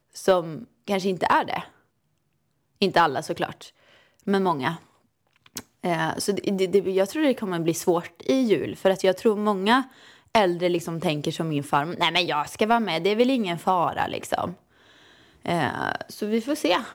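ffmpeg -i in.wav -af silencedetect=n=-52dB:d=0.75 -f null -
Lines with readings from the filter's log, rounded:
silence_start: 1.77
silence_end: 2.76 | silence_duration: 1.00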